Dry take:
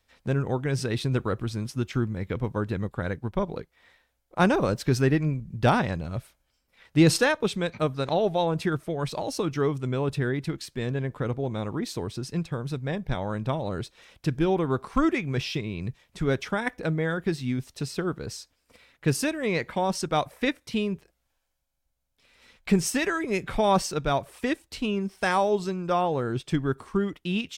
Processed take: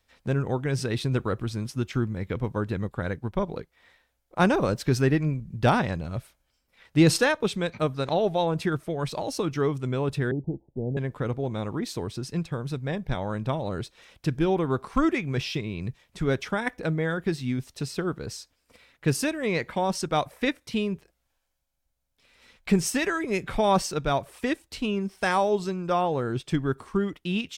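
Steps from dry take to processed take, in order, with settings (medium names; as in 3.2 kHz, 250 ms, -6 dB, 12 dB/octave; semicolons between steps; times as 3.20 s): 10.31–10.97 s: steep low-pass 870 Hz 96 dB/octave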